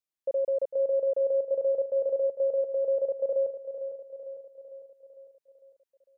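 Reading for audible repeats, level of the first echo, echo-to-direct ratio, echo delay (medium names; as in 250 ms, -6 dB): 5, -10.5 dB, -9.0 dB, 452 ms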